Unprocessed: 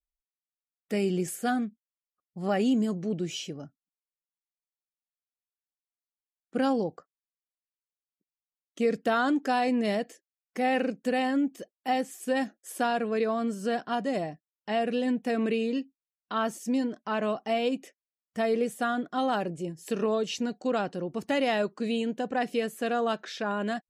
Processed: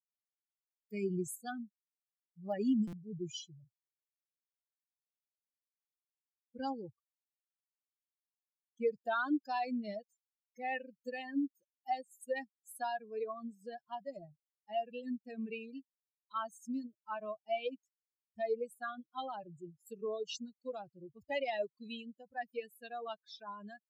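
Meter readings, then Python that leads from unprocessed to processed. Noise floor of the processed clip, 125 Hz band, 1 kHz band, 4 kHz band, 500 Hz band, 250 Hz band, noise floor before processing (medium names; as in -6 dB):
under -85 dBFS, -11.0 dB, -10.0 dB, -11.5 dB, -11.0 dB, -11.5 dB, under -85 dBFS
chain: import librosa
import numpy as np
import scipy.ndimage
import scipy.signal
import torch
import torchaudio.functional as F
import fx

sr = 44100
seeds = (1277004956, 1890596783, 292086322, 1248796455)

y = fx.bin_expand(x, sr, power=3.0)
y = fx.buffer_glitch(y, sr, at_s=(2.87, 11.75), block=256, repeats=9)
y = F.gain(torch.from_numpy(y), -3.0).numpy()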